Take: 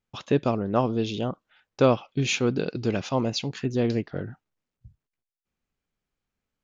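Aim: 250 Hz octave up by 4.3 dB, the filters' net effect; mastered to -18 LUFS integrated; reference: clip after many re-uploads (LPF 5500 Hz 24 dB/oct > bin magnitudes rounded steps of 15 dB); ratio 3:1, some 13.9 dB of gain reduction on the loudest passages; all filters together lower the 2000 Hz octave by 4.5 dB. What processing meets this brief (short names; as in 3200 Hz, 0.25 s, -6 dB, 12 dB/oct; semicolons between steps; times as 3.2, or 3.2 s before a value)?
bell 250 Hz +5 dB; bell 2000 Hz -6.5 dB; compressor 3:1, threshold -32 dBFS; LPF 5500 Hz 24 dB/oct; bin magnitudes rounded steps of 15 dB; gain +17 dB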